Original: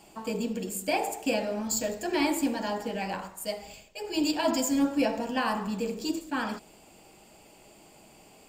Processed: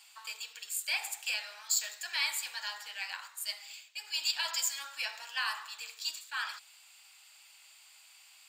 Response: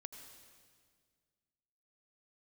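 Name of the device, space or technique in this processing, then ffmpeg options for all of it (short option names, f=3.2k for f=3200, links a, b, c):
headphones lying on a table: -af "highpass=f=1.3k:w=0.5412,highpass=f=1.3k:w=1.3066,equalizer=f=3.9k:t=o:w=0.4:g=7.5"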